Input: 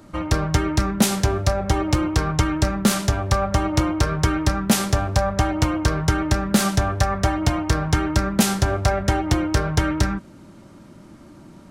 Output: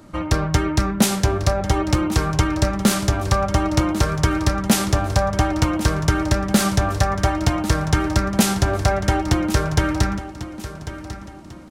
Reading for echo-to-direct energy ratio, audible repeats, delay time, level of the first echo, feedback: -13.0 dB, 3, 1.096 s, -13.5 dB, 37%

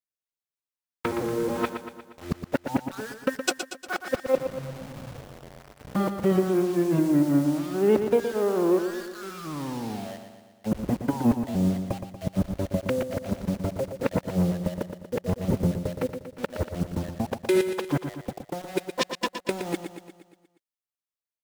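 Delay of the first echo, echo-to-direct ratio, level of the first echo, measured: 0.118 s, -7.0 dB, -8.5 dB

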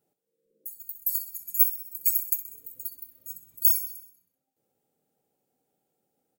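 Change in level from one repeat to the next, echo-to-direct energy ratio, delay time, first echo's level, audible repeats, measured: -4.5 dB, -11.0 dB, 64 ms, -13.0 dB, 5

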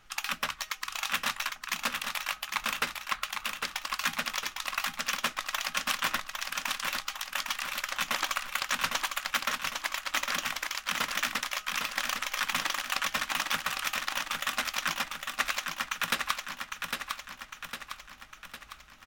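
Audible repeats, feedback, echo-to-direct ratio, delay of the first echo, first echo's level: 6, 53%, -3.5 dB, 0.805 s, -5.0 dB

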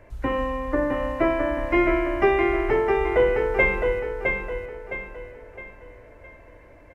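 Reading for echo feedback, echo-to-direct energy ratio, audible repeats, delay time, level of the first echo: 40%, -3.5 dB, 4, 0.662 s, -4.5 dB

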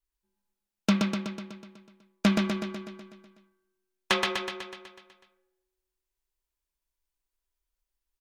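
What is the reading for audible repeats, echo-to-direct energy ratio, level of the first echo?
8, -1.0 dB, -3.0 dB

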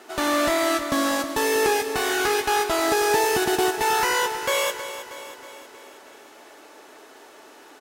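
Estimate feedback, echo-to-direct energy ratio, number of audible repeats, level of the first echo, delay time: 56%, -10.5 dB, 5, -12.0 dB, 0.318 s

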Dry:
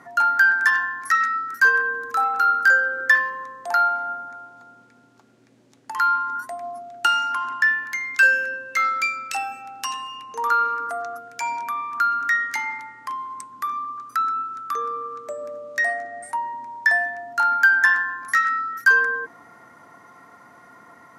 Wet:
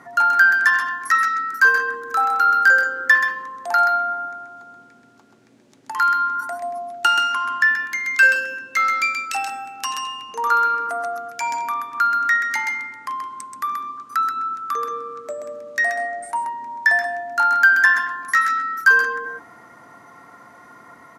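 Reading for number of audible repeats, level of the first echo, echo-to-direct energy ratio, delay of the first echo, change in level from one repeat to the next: 1, -5.5 dB, -5.5 dB, 0.13 s, no steady repeat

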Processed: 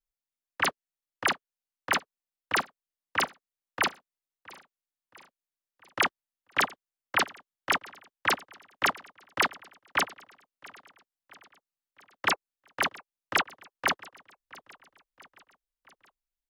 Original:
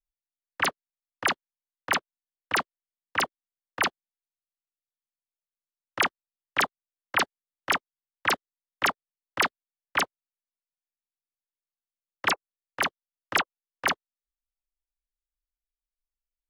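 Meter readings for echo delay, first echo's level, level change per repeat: 0.671 s, -22.0 dB, -5.0 dB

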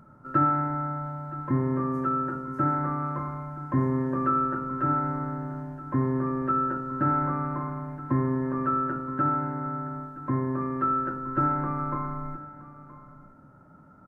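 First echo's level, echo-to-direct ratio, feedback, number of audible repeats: -17.5 dB, -17.5 dB, no steady repeat, 1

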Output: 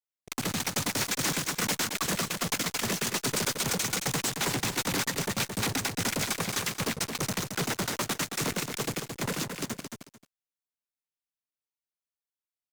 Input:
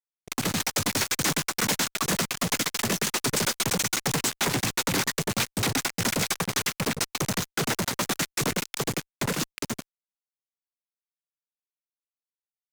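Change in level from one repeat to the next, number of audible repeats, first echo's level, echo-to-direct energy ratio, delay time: -13.0 dB, 2, -6.5 dB, -6.5 dB, 0.221 s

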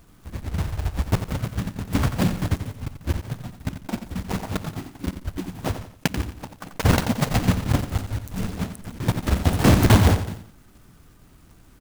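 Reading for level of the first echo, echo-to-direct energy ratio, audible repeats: -10.0 dB, -9.5 dB, 3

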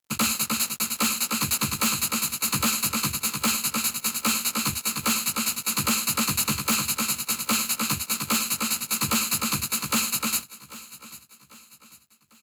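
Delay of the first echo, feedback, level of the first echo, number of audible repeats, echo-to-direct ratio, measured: 0.795 s, 42%, -18.0 dB, 3, -17.0 dB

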